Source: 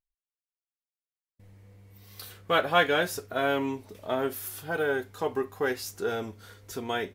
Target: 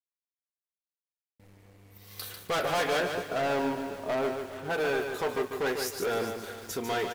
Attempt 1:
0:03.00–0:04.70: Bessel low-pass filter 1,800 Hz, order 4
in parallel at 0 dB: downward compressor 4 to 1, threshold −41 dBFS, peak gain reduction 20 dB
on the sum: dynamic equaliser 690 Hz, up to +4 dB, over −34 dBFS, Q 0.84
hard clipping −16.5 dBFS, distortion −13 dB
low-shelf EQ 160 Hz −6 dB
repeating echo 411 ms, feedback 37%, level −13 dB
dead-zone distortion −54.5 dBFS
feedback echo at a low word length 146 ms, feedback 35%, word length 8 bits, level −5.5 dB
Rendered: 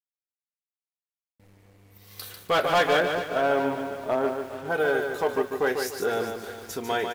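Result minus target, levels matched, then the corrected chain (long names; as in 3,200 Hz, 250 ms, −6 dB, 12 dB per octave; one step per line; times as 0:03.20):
hard clipping: distortion −8 dB
0:03.00–0:04.70: Bessel low-pass filter 1,800 Hz, order 4
in parallel at 0 dB: downward compressor 4 to 1, threshold −41 dBFS, peak gain reduction 20 dB
on the sum: dynamic equaliser 690 Hz, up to +4 dB, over −34 dBFS, Q 0.84
hard clipping −25.5 dBFS, distortion −5 dB
low-shelf EQ 160 Hz −6 dB
repeating echo 411 ms, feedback 37%, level −13 dB
dead-zone distortion −54.5 dBFS
feedback echo at a low word length 146 ms, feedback 35%, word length 8 bits, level −5.5 dB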